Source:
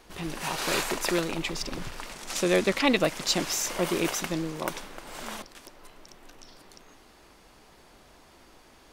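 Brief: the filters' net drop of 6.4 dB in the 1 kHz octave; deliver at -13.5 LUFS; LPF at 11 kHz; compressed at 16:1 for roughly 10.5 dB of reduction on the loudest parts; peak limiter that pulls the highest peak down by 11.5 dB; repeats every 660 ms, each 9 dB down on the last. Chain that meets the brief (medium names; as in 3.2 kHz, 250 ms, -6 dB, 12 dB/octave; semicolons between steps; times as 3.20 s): low-pass 11 kHz; peaking EQ 1 kHz -8.5 dB; compression 16:1, threshold -30 dBFS; peak limiter -29 dBFS; feedback delay 660 ms, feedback 35%, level -9 dB; trim +25.5 dB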